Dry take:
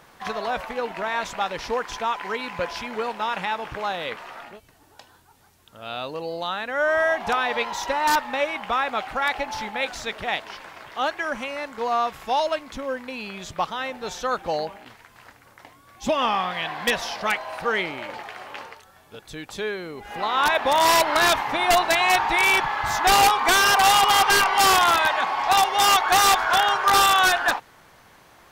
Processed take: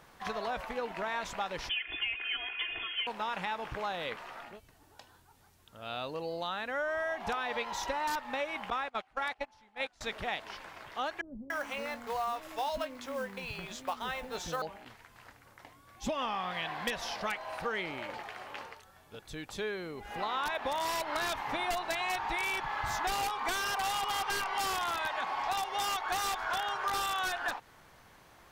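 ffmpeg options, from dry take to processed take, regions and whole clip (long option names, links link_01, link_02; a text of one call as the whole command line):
ffmpeg -i in.wav -filter_complex "[0:a]asettb=1/sr,asplit=3[link_01][link_02][link_03];[link_01]atrim=end=1.694[link_04];[link_02]atrim=start=1.69:end=3.07,asetpts=PTS-STARTPTS,afade=type=in:duration=0.004:curve=qsin,afade=type=out:start_time=1.376:duration=0.004:curve=qsin,equalizer=frequency=2400:width=3.6:gain=-9,aecho=1:1:2.9:0.99,atrim=end_sample=60858,lowpass=frequency=3000:width_type=q:width=0.5098,lowpass=frequency=3000:width_type=q:width=0.6013,lowpass=frequency=3000:width_type=q:width=0.9,lowpass=frequency=3000:width_type=q:width=2.563,afreqshift=-3500[link_05];[link_03]atrim=start=3.066[link_06];[link_04][link_05]acrossfade=duration=0.004:curve1=hsin:curve2=qsin[link_07];[link_07][link_06]acrossfade=duration=0.004:curve1=qsin:curve2=hsin,asettb=1/sr,asplit=3[link_08][link_09][link_10];[link_08]atrim=end=8.704[link_11];[link_09]atrim=start=8.7:end=10.01,asetpts=PTS-STARTPTS,afade=type=in:duration=0.004:curve=qsin,afade=type=out:start_time=1.306:duration=0.004:curve=qsin,agate=range=-25dB:threshold=-27dB:ratio=16:release=100:detection=peak,lowpass=frequency=12000:width=0.5412,lowpass=frequency=12000:width=1.3066[link_12];[link_10]atrim=start=10.006[link_13];[link_11][link_12]acrossfade=duration=0.004:curve1=hsin:curve2=qsin[link_14];[link_14][link_13]acrossfade=duration=0.004:curve1=qsin:curve2=hsin,asettb=1/sr,asplit=3[link_15][link_16][link_17];[link_15]atrim=end=11.214[link_18];[link_16]atrim=start=11.21:end=14.62,asetpts=PTS-STARTPTS,afade=type=in:duration=0.004:curve=qsin,afade=type=out:start_time=3.406:duration=0.004:curve=qsin,acrusher=bits=5:mode=log:mix=0:aa=0.000001,asplit=2[link_19][link_20];[link_20]adelay=18,volume=-11dB[link_21];[link_19][link_21]amix=inputs=2:normalize=0,atrim=end_sample=150381,acrossover=split=350[link_22][link_23];[link_23]adelay=290[link_24];[link_22][link_24]amix=inputs=2:normalize=0,atrim=end_sample=150381[link_25];[link_17]atrim=start=14.616[link_26];[link_18][link_25]acrossfade=duration=0.004:curve1=hsin:curve2=qsin[link_27];[link_27][link_26]acrossfade=duration=0.004:curve1=qsin:curve2=hsin,lowshelf=frequency=92:gain=6,acompressor=threshold=-24dB:ratio=6,volume=-6.5dB" out.wav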